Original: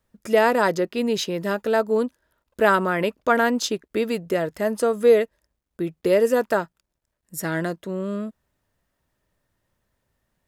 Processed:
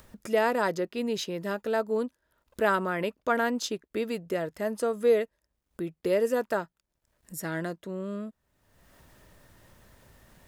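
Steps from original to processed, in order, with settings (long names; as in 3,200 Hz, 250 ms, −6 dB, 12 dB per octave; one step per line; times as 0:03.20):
upward compression, threshold −29 dBFS
level −7 dB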